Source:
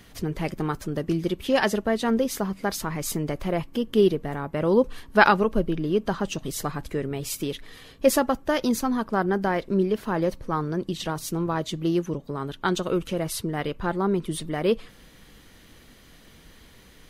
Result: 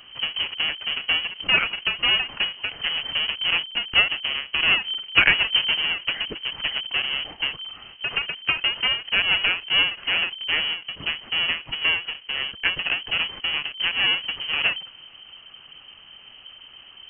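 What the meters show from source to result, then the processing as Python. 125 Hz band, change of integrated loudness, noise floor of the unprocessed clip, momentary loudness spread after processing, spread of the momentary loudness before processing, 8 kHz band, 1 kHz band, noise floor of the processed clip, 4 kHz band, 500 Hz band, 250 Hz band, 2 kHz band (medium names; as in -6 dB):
-14.5 dB, +4.0 dB, -52 dBFS, 8 LU, 9 LU, under -40 dB, -6.5 dB, -48 dBFS, +17.5 dB, -17.0 dB, -19.5 dB, +9.0 dB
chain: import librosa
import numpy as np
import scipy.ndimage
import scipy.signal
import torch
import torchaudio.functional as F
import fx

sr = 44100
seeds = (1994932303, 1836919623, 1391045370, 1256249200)

y = fx.halfwave_hold(x, sr)
y = fx.freq_invert(y, sr, carrier_hz=3100)
y = fx.end_taper(y, sr, db_per_s=170.0)
y = F.gain(torch.from_numpy(y), -1.0).numpy()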